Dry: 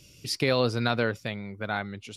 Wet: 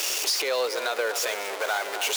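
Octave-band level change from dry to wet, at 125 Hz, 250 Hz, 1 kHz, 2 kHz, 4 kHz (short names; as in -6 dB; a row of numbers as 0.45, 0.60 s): under -40 dB, -14.5 dB, +3.0 dB, +3.5 dB, +6.5 dB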